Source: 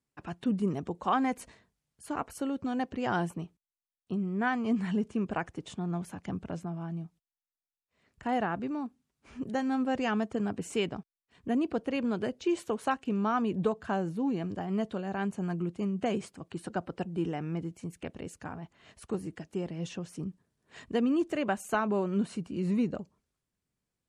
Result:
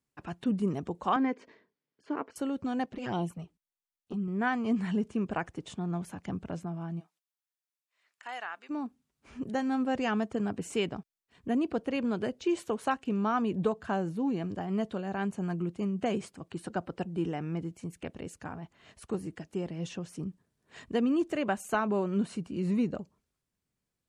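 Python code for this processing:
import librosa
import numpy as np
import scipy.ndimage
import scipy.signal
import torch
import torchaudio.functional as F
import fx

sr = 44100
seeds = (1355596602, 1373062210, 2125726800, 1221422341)

y = fx.cabinet(x, sr, low_hz=270.0, low_slope=12, high_hz=4400.0, hz=(280.0, 410.0, 750.0, 1300.0, 2700.0, 3900.0), db=(5, 7, -7, -4, -5, -8), at=(1.16, 2.36))
y = fx.env_flanger(y, sr, rest_ms=11.0, full_db=-25.5, at=(2.86, 4.28))
y = fx.highpass(y, sr, hz=fx.line((6.99, 690.0), (8.69, 1500.0)), slope=12, at=(6.99, 8.69), fade=0.02)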